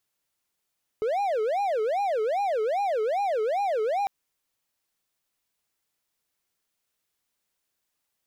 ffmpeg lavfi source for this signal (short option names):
-f lavfi -i "aevalsrc='0.0891*(1-4*abs(mod((621*t-195/(2*PI*2.5)*sin(2*PI*2.5*t))+0.25,1)-0.5))':d=3.05:s=44100"